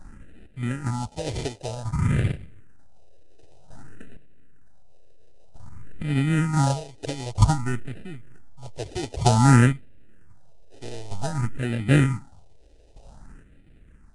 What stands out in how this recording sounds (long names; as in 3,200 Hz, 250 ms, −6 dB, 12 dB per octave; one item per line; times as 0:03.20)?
aliases and images of a low sample rate 1,100 Hz, jitter 0%
phaser sweep stages 4, 0.53 Hz, lowest notch 190–1,000 Hz
chopped level 0.54 Hz, depth 65%, duty 25%
Nellymoser